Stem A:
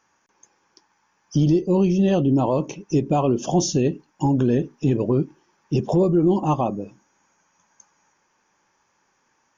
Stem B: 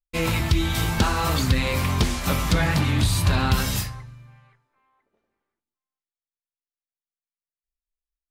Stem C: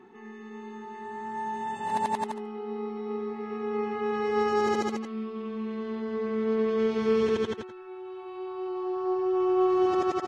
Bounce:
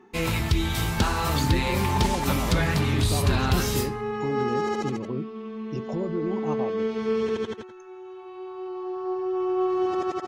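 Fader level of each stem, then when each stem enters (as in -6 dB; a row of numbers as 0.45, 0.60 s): -12.0, -2.5, -1.0 dB; 0.00, 0.00, 0.00 s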